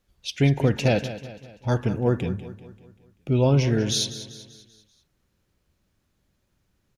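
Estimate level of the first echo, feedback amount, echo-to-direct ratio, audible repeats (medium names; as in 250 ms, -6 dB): -13.5 dB, 48%, -12.5 dB, 4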